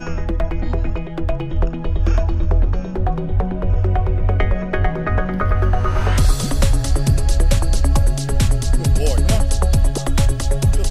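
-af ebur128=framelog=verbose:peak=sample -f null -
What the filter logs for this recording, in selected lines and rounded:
Integrated loudness:
  I:         -19.6 LUFS
  Threshold: -29.6 LUFS
Loudness range:
  LRA:         3.3 LU
  Threshold: -39.4 LUFS
  LRA low:   -21.6 LUFS
  LRA high:  -18.3 LUFS
Sample peak:
  Peak:       -2.7 dBFS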